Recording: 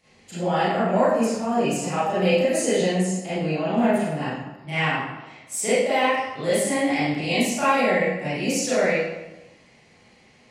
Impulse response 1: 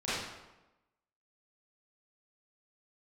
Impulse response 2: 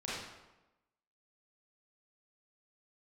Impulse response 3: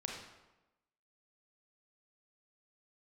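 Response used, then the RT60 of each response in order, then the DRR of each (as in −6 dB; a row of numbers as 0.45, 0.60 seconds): 1; 1.0, 1.0, 1.0 seconds; −13.5, −9.0, −0.5 decibels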